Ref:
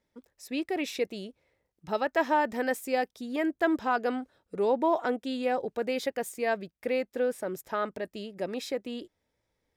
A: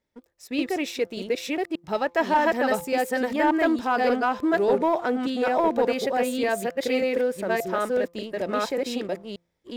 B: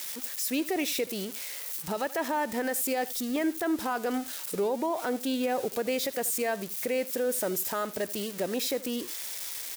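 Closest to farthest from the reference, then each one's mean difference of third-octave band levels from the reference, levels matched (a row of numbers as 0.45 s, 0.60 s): A, B; 6.0 dB, 9.5 dB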